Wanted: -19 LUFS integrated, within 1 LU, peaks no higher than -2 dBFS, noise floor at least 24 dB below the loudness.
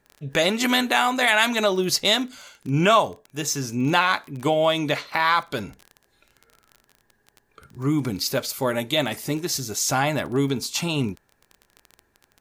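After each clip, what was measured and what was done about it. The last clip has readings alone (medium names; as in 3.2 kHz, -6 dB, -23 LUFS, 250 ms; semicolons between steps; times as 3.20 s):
tick rate 23 per s; loudness -22.5 LUFS; peak level -3.5 dBFS; loudness target -19.0 LUFS
-> de-click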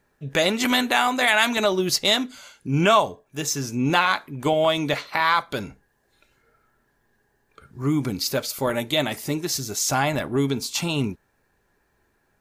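tick rate 0 per s; loudness -22.5 LUFS; peak level -3.5 dBFS; loudness target -19.0 LUFS
-> trim +3.5 dB; peak limiter -2 dBFS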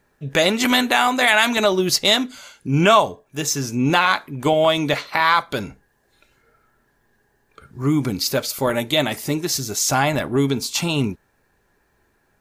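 loudness -19.0 LUFS; peak level -2.0 dBFS; noise floor -65 dBFS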